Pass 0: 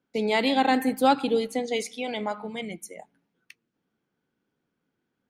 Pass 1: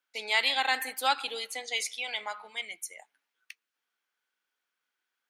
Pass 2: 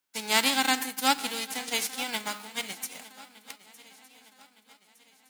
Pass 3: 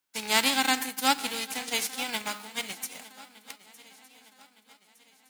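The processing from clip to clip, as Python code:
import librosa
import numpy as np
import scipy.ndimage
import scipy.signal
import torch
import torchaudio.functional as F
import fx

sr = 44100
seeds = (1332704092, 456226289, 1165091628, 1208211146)

y1 = scipy.signal.sosfilt(scipy.signal.butter(2, 1400.0, 'highpass', fs=sr, output='sos'), x)
y1 = y1 * 10.0 ** (3.0 / 20.0)
y2 = fx.envelope_flatten(y1, sr, power=0.3)
y2 = fx.echo_swing(y2, sr, ms=1212, ratio=3, feedback_pct=41, wet_db=-19)
y2 = y2 * 10.0 ** (2.5 / 20.0)
y3 = fx.rattle_buzz(y2, sr, strikes_db=-46.0, level_db=-27.0)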